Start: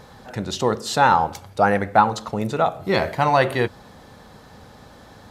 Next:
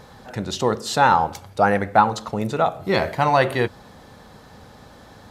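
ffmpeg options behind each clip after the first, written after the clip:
-af anull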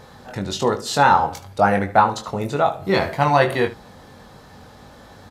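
-af "aecho=1:1:21|75:0.531|0.158"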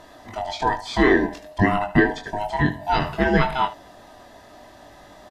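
-filter_complex "[0:a]afftfilt=real='real(if(lt(b,1008),b+24*(1-2*mod(floor(b/24),2)),b),0)':imag='imag(if(lt(b,1008),b+24*(1-2*mod(floor(b/24),2)),b),0)':win_size=2048:overlap=0.75,acrossover=split=4900[s0][s1];[s1]acompressor=threshold=0.00316:ratio=4:attack=1:release=60[s2];[s0][s2]amix=inputs=2:normalize=0,aresample=32000,aresample=44100,volume=0.794"

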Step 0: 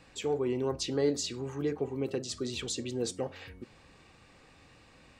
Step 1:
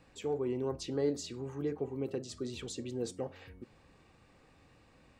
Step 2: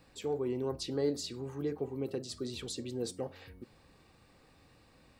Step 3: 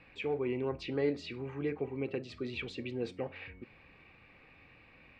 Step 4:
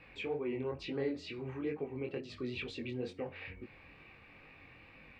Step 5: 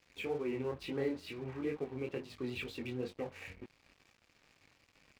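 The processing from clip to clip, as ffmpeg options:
-af "equalizer=f=4600:w=0.32:g=-6,volume=0.708"
-af "aexciter=amount=1.3:drive=6.8:freq=3800"
-af "lowpass=f=2400:t=q:w=5.4"
-af "acompressor=threshold=0.00501:ratio=1.5,flanger=delay=19:depth=5.5:speed=2.2,volume=1.78"
-af "aeval=exprs='sgn(val(0))*max(abs(val(0))-0.00188,0)':c=same,volume=1.12"

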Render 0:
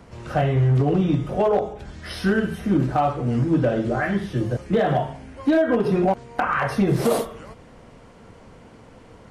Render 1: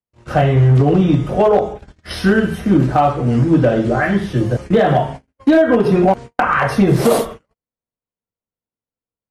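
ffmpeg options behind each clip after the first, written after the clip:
-af "agate=range=0.00158:threshold=0.02:ratio=16:detection=peak,volume=2.24"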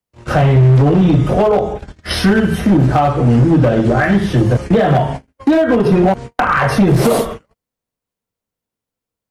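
-filter_complex "[0:a]asplit=2[s0][s1];[s1]alimiter=limit=0.224:level=0:latency=1:release=167,volume=0.708[s2];[s0][s2]amix=inputs=2:normalize=0,acrossover=split=180[s3][s4];[s4]acompressor=threshold=0.141:ratio=2[s5];[s3][s5]amix=inputs=2:normalize=0,asoftclip=type=hard:threshold=0.316,volume=1.5"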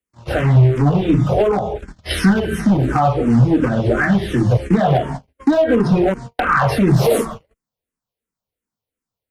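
-filter_complex "[0:a]asplit=2[s0][s1];[s1]afreqshift=-2.8[s2];[s0][s2]amix=inputs=2:normalize=1"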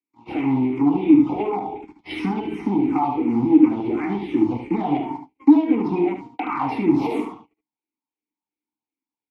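-filter_complex "[0:a]acrossover=split=310|1000|2800[s0][s1][s2][s3];[s0]aeval=exprs='max(val(0),0)':c=same[s4];[s4][s1][s2][s3]amix=inputs=4:normalize=0,asplit=3[s5][s6][s7];[s5]bandpass=f=300:t=q:w=8,volume=1[s8];[s6]bandpass=f=870:t=q:w=8,volume=0.501[s9];[s7]bandpass=f=2240:t=q:w=8,volume=0.355[s10];[s8][s9][s10]amix=inputs=3:normalize=0,aecho=1:1:74:0.398,volume=2.66"

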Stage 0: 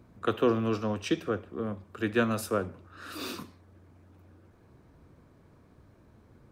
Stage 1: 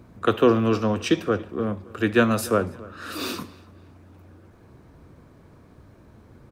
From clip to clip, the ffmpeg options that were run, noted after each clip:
-filter_complex "[0:a]asplit=2[s0][s1];[s1]adelay=283,lowpass=f=3400:p=1,volume=0.0891,asplit=2[s2][s3];[s3]adelay=283,lowpass=f=3400:p=1,volume=0.39,asplit=2[s4][s5];[s5]adelay=283,lowpass=f=3400:p=1,volume=0.39[s6];[s0][s2][s4][s6]amix=inputs=4:normalize=0,volume=2.37"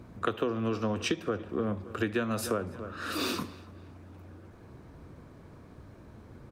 -af "highshelf=f=11000:g=-4.5,acompressor=threshold=0.0501:ratio=12"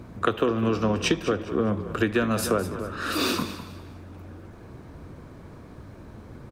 -filter_complex "[0:a]asplit=4[s0][s1][s2][s3];[s1]adelay=204,afreqshift=-47,volume=0.224[s4];[s2]adelay=408,afreqshift=-94,volume=0.0692[s5];[s3]adelay=612,afreqshift=-141,volume=0.0216[s6];[s0][s4][s5][s6]amix=inputs=4:normalize=0,volume=2.11"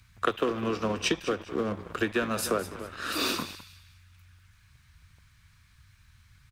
-filter_complex "[0:a]lowshelf=f=180:g=-9.5,acrossover=split=110|1700[s0][s1][s2];[s1]aeval=exprs='sgn(val(0))*max(abs(val(0))-0.0112,0)':c=same[s3];[s0][s3][s2]amix=inputs=3:normalize=0,volume=0.841"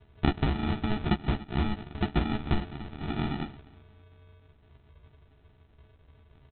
-filter_complex "[0:a]aresample=8000,acrusher=samples=15:mix=1:aa=0.000001,aresample=44100,asplit=2[s0][s1];[s1]adelay=14,volume=0.562[s2];[s0][s2]amix=inputs=2:normalize=0"

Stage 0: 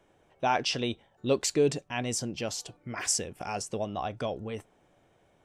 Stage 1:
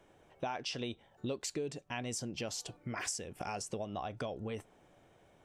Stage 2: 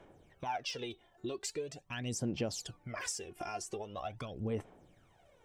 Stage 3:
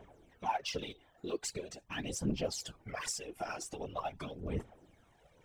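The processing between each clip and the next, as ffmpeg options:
-af "acompressor=threshold=0.0141:ratio=6,volume=1.12"
-af "aphaser=in_gain=1:out_gain=1:delay=2.9:decay=0.68:speed=0.43:type=sinusoidal,volume=0.668"
-af "aphaser=in_gain=1:out_gain=1:delay=4.8:decay=0.61:speed=1.3:type=triangular,afftfilt=real='hypot(re,im)*cos(2*PI*random(0))':imag='hypot(re,im)*sin(2*PI*random(1))':win_size=512:overlap=0.75,volume=1.68"

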